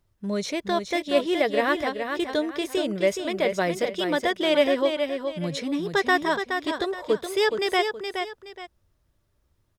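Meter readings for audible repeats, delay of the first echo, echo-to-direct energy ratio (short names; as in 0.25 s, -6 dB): 2, 0.421 s, -6.0 dB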